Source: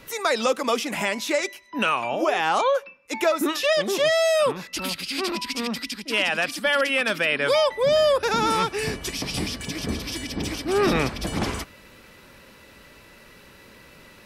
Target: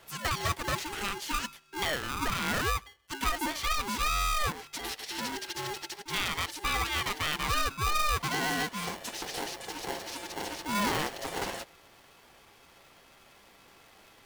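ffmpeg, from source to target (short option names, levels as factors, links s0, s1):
-af "aeval=exprs='val(0)*sgn(sin(2*PI*610*n/s))':c=same,volume=0.376"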